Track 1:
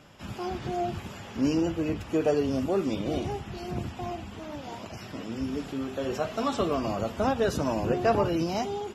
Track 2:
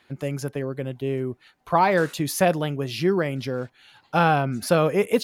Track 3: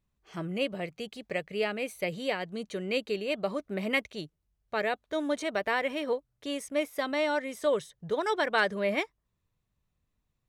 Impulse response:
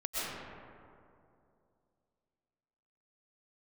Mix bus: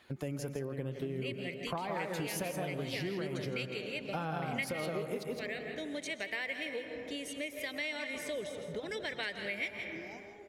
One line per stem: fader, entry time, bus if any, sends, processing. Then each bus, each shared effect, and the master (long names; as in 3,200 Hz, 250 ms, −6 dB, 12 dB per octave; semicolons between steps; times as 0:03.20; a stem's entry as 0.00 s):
−16.5 dB, 1.55 s, bus A, no send, echo send −14.5 dB, no processing
+3.0 dB, 0.00 s, bus A, send −23 dB, echo send −13.5 dB, no processing
−4.0 dB, 0.65 s, no bus, send −13.5 dB, echo send −10.5 dB, high shelf with overshoot 1,600 Hz +7.5 dB, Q 3; rotating-speaker cabinet horn 0.65 Hz
bus A: 0.0 dB, flanger 0.39 Hz, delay 1.5 ms, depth 7.3 ms, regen +62%; downward compressor, threshold −26 dBFS, peak gain reduction 12.5 dB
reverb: on, RT60 2.6 s, pre-delay 85 ms
echo: single-tap delay 164 ms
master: parametric band 2,000 Hz −2.5 dB 2.2 octaves; downward compressor 3 to 1, threshold −37 dBFS, peak gain reduction 14 dB